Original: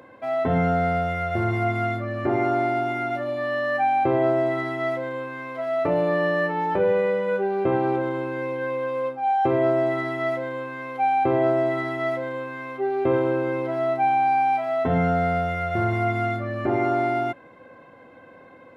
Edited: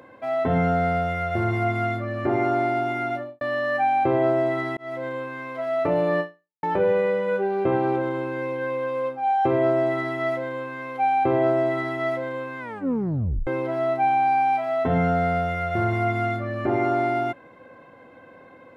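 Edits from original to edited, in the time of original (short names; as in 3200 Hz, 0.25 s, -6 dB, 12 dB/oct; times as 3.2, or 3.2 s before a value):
3.1–3.41 studio fade out
4.77–5.06 fade in
6.2–6.63 fade out exponential
12.59 tape stop 0.88 s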